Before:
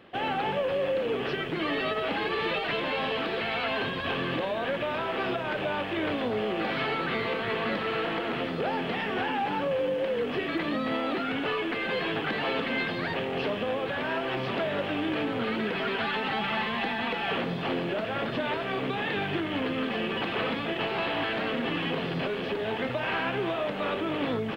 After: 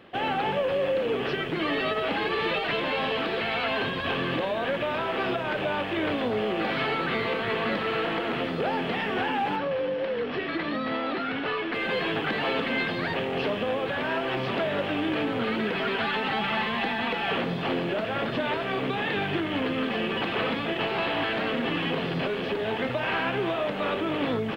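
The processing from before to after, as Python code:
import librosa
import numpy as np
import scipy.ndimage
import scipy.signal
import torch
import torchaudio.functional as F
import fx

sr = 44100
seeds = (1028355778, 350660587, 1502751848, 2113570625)

y = fx.cheby_ripple(x, sr, hz=5700.0, ripple_db=3, at=(9.56, 11.74))
y = F.gain(torch.from_numpy(y), 2.0).numpy()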